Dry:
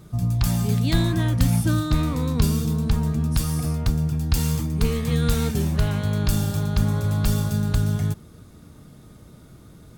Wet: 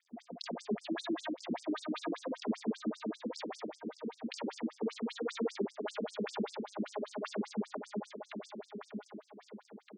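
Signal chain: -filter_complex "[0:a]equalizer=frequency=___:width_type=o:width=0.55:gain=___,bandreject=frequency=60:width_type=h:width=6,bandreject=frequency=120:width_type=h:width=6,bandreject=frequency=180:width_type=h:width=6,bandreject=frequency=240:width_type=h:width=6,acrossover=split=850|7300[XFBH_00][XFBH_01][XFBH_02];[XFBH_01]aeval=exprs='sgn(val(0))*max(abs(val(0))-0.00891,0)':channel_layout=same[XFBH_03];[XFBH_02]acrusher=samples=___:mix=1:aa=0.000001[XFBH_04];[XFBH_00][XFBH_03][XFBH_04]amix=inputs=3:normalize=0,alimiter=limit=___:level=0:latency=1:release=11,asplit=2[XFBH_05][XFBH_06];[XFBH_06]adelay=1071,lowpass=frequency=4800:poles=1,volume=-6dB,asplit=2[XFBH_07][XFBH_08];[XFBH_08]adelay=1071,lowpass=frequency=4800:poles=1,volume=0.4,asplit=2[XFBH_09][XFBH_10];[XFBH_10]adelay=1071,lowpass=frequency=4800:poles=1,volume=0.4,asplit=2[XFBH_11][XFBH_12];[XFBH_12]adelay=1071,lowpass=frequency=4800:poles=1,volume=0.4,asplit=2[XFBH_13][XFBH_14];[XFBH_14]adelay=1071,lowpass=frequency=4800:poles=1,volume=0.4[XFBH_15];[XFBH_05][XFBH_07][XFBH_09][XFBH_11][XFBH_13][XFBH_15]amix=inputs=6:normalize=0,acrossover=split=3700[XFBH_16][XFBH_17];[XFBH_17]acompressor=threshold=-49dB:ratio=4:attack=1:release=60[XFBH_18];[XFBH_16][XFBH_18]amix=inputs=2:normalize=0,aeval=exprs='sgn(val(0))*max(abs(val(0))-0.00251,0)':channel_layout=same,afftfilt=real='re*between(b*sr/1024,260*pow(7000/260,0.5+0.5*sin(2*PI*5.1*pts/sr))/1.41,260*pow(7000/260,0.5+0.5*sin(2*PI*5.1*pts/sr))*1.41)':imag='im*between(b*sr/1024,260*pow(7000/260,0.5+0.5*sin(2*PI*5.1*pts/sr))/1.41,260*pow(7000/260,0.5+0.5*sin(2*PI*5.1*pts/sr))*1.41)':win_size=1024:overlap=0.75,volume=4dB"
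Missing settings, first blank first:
280, -11.5, 32, -16dB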